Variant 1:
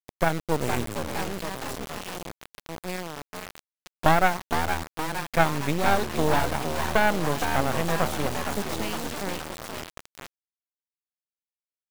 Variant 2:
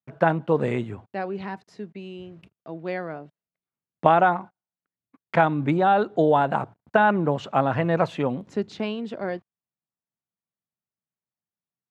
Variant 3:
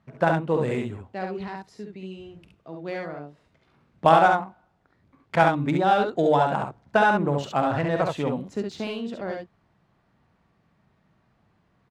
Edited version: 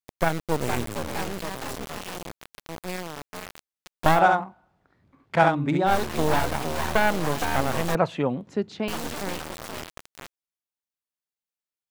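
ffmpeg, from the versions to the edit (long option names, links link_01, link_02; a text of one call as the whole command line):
ffmpeg -i take0.wav -i take1.wav -i take2.wav -filter_complex "[0:a]asplit=3[link_01][link_02][link_03];[link_01]atrim=end=4.23[link_04];[2:a]atrim=start=4.13:end=5.95[link_05];[link_02]atrim=start=5.85:end=7.952[link_06];[1:a]atrim=start=7.948:end=8.882[link_07];[link_03]atrim=start=8.878[link_08];[link_04][link_05]acrossfade=duration=0.1:curve1=tri:curve2=tri[link_09];[link_09][link_06]acrossfade=duration=0.1:curve1=tri:curve2=tri[link_10];[link_10][link_07]acrossfade=duration=0.004:curve1=hsin:curve2=hsin[link_11];[link_11][link_08]acrossfade=duration=0.004:curve1=hsin:curve2=hsin" out.wav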